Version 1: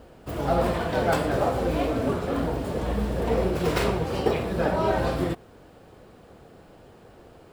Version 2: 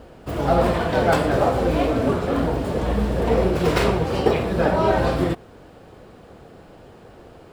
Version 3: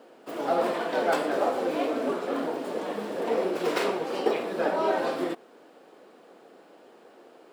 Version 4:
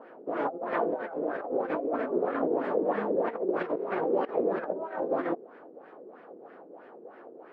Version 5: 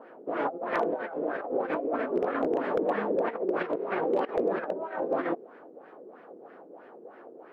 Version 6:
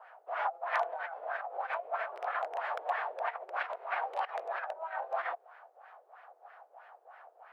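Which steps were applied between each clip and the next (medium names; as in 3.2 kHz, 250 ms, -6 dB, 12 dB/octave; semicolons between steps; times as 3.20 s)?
treble shelf 9.2 kHz -6 dB; trim +5 dB
high-pass 260 Hz 24 dB/octave; trim -6 dB
compressor with a negative ratio -30 dBFS, ratio -0.5; LFO low-pass sine 3.1 Hz 390–1900 Hz; trim -2 dB
dynamic bell 2.6 kHz, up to +4 dB, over -51 dBFS, Q 0.74; wavefolder -17.5 dBFS
elliptic high-pass 710 Hz, stop band 80 dB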